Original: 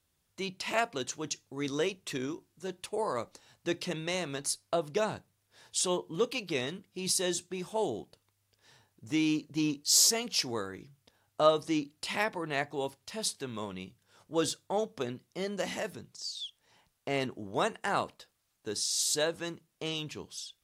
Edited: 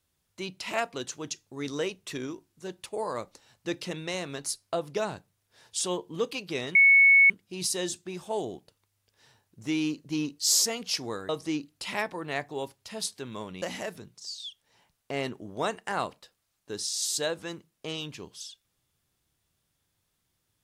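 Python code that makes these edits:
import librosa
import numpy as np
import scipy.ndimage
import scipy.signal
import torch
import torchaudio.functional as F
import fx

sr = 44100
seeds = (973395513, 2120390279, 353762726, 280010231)

y = fx.edit(x, sr, fx.insert_tone(at_s=6.75, length_s=0.55, hz=2210.0, db=-14.0),
    fx.cut(start_s=10.74, length_s=0.77),
    fx.cut(start_s=13.84, length_s=1.75), tone=tone)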